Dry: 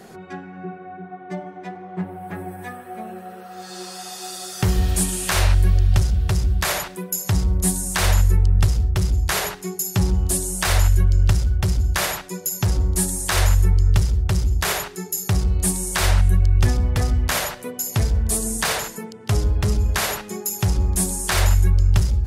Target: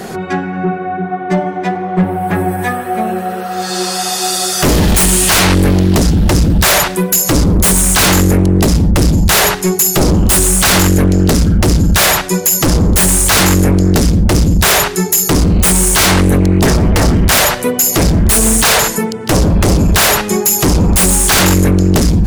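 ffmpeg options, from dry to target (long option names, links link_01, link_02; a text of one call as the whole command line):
ffmpeg -i in.wav -af "aeval=exprs='0.501*sin(PI/2*5.01*val(0)/0.501)':channel_layout=same" out.wav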